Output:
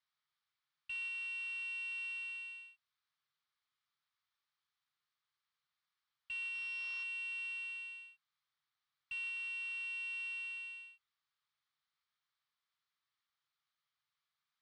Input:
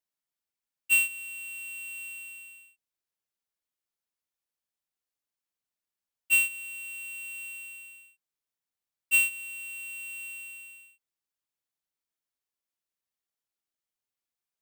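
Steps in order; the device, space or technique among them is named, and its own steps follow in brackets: 6.53–7.02 bell 230 Hz -> 930 Hz +14.5 dB 2.4 oct; scooped metal amplifier (tube stage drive 43 dB, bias 0.4; speaker cabinet 99–4000 Hz, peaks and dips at 140 Hz +10 dB, 570 Hz -8 dB, 1200 Hz +8 dB, 2700 Hz -7 dB; passive tone stack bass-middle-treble 10-0-10); gain +13 dB

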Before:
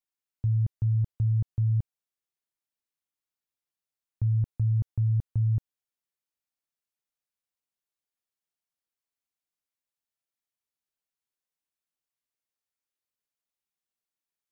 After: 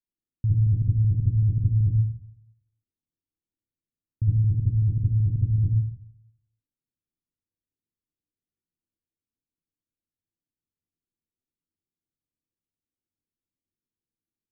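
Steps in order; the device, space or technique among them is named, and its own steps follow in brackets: 4.23–5.56 Chebyshev low-pass 500 Hz, order 2; next room (LPF 360 Hz 24 dB/oct; reverb RT60 0.65 s, pre-delay 55 ms, DRR -6.5 dB); gain +2 dB

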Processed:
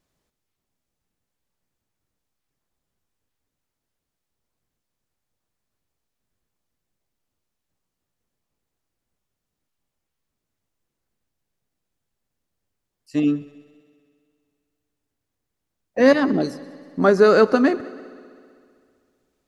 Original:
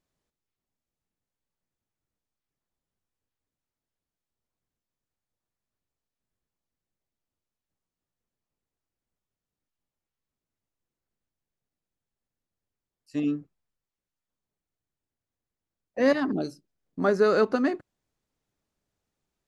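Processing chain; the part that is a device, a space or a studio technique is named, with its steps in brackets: multi-head tape echo (multi-head echo 64 ms, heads second and third, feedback 61%, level -22 dB; wow and flutter 22 cents); gain +7.5 dB

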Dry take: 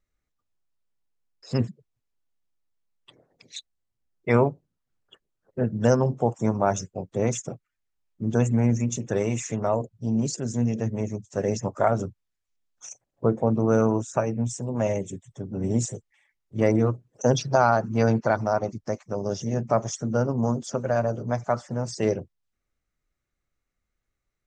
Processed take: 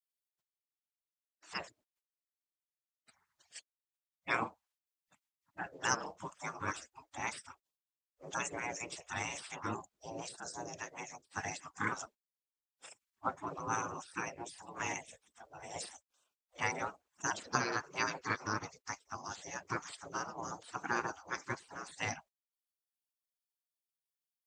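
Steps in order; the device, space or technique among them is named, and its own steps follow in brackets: filter by subtraction (in parallel: LPF 460 Hz 12 dB/oct + phase invert); 10.33–10.74 on the sum: band shelf 2500 Hz -15 dB 1 oct; spectral gate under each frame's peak -20 dB weak; gain +2 dB

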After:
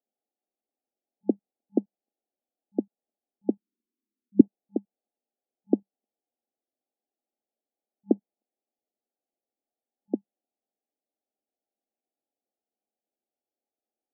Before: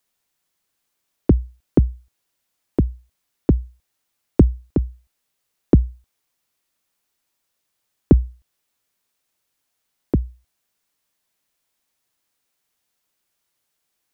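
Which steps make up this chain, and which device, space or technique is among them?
parallel distortion (in parallel at -12.5 dB: hard clip -15 dBFS, distortion -7 dB); on the sum: FFT band-pass 200–860 Hz; 3.59–4.41 EQ curve 130 Hz 0 dB, 240 Hz +11 dB, 390 Hz +2 dB, 680 Hz -26 dB; gain -7.5 dB

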